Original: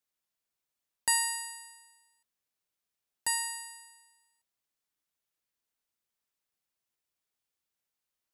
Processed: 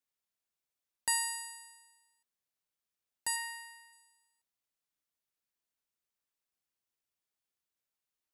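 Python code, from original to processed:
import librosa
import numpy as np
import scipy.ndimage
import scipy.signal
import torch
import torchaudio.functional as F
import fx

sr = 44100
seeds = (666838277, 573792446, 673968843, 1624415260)

y = fx.graphic_eq(x, sr, hz=(125, 2000, 8000), db=(11, 5, -8), at=(3.36, 3.93))
y = F.gain(torch.from_numpy(y), -4.0).numpy()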